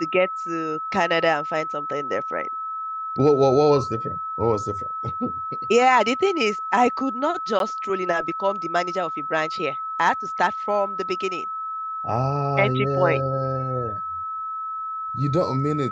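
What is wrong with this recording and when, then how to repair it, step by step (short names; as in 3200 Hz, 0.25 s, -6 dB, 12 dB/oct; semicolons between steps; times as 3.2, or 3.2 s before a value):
tone 1300 Hz -27 dBFS
7.59–7.6 gap 12 ms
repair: notch 1300 Hz, Q 30; interpolate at 7.59, 12 ms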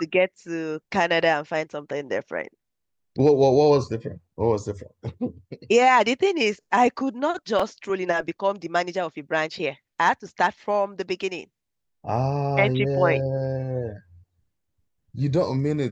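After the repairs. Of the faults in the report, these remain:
none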